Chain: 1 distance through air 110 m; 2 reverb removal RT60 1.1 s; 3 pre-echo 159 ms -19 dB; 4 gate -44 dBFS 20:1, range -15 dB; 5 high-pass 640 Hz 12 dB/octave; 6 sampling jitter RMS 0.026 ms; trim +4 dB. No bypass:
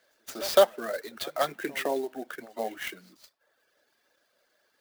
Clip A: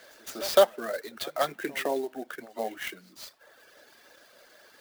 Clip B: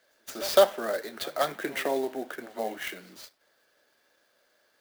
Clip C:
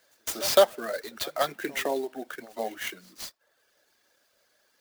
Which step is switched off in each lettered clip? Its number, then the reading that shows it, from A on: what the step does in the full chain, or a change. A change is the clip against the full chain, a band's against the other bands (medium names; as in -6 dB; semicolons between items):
4, momentary loudness spread change +5 LU; 2, momentary loudness spread change +4 LU; 1, 8 kHz band +4.5 dB